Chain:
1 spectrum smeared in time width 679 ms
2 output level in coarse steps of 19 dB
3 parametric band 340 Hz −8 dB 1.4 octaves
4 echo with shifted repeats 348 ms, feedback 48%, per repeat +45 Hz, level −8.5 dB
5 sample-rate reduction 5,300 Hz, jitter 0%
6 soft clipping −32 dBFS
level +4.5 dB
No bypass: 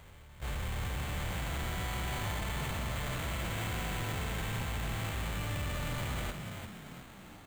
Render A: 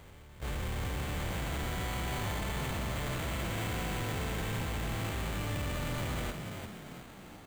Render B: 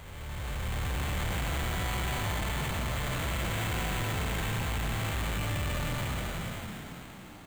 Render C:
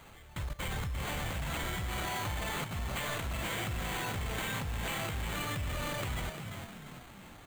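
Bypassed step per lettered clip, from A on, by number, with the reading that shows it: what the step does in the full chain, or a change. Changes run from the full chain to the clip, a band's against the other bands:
3, 500 Hz band +2.5 dB
2, change in crest factor −3.5 dB
1, 125 Hz band −3.5 dB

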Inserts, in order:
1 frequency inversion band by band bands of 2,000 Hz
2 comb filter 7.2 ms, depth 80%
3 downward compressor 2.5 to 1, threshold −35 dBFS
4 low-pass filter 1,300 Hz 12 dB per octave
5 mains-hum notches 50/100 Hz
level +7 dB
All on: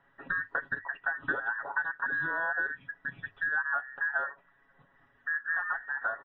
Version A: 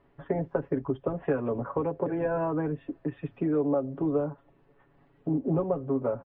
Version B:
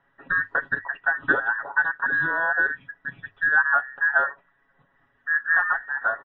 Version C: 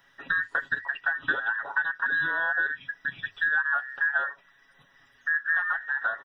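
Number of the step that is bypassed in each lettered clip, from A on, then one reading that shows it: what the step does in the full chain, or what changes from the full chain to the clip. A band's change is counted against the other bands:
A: 1, 2 kHz band −39.0 dB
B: 3, average gain reduction 7.0 dB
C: 4, 2 kHz band +5.0 dB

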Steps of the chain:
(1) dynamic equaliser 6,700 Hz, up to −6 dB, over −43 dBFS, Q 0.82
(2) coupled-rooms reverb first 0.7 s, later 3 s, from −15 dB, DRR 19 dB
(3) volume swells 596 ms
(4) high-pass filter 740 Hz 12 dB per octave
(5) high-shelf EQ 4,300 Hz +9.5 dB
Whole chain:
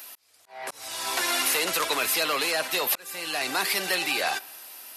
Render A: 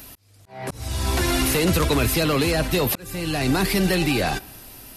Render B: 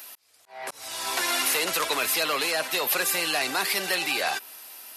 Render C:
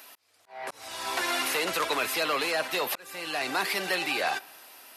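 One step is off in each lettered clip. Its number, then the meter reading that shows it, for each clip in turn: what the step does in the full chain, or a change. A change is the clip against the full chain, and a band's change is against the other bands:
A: 4, 125 Hz band +27.5 dB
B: 2, change in momentary loudness spread −2 LU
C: 5, 8 kHz band −7.5 dB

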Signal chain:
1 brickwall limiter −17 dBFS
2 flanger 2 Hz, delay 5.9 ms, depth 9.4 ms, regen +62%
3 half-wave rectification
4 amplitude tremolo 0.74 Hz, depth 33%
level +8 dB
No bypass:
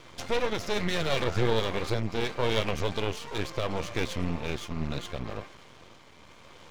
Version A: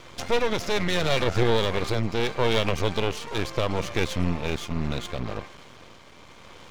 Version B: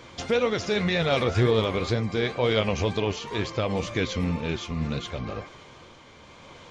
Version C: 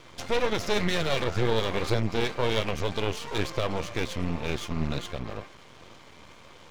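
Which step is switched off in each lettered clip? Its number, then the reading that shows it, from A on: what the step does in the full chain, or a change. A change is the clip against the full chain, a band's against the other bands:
2, change in integrated loudness +4.5 LU
3, distortion level 0 dB
4, change in integrated loudness +1.5 LU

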